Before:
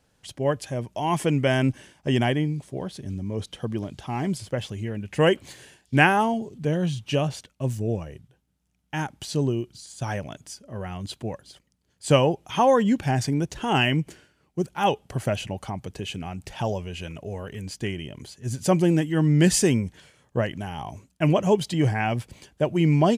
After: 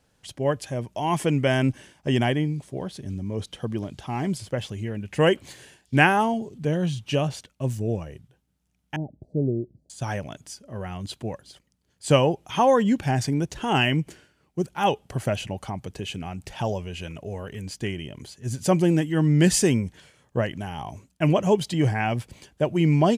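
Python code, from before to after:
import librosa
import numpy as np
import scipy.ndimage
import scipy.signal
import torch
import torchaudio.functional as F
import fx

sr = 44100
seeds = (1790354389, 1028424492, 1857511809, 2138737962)

y = fx.ellip_lowpass(x, sr, hz=640.0, order=4, stop_db=50, at=(8.96, 9.9))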